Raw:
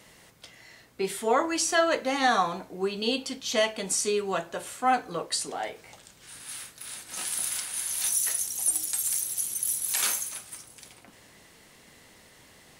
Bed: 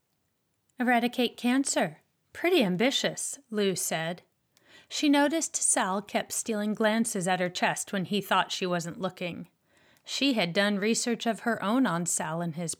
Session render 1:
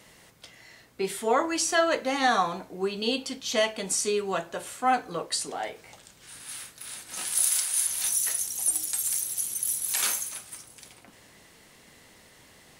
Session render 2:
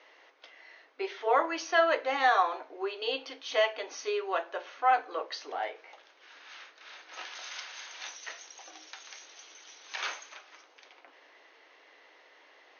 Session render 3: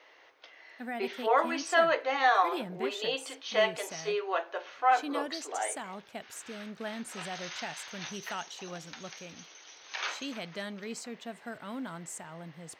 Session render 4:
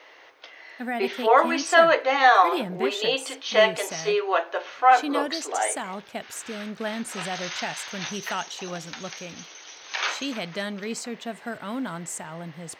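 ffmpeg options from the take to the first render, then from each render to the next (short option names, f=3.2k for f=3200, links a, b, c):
-filter_complex "[0:a]asettb=1/sr,asplit=3[a][b][c];[a]atrim=end=7.354[d];[b]atrim=start=7.35:end=7.87,asetpts=PTS-STARTPTS,afade=t=in:d=0.004:c=qsin,afade=t=out:st=0.516:d=0.004:c=qsin,bass=f=250:g=-12,treble=f=4k:g=7[e];[c]atrim=start=7.866[f];[d][e]acrossfade=d=0.004:c1=hsin:c2=qsin[g];[g][f]acrossfade=d=0.004:c1=qsin:c2=hsin"
-filter_complex "[0:a]afftfilt=real='re*between(b*sr/4096,260,6600)':imag='im*between(b*sr/4096,260,6600)':win_size=4096:overlap=0.75,acrossover=split=400 3400:gain=0.126 1 0.158[a][b][c];[a][b][c]amix=inputs=3:normalize=0"
-filter_complex "[1:a]volume=-13.5dB[a];[0:a][a]amix=inputs=2:normalize=0"
-af "volume=8dB"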